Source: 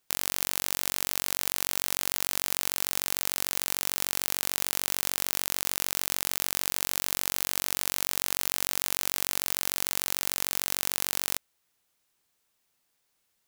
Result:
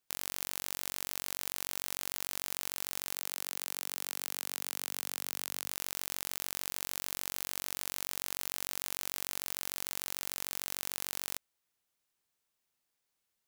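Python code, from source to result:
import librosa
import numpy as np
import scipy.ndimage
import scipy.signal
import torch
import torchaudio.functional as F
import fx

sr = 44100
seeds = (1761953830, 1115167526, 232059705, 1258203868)

y = fx.highpass(x, sr, hz=fx.line((3.13, 360.0), (5.69, 120.0)), slope=12, at=(3.13, 5.69), fade=0.02)
y = y * librosa.db_to_amplitude(-8.5)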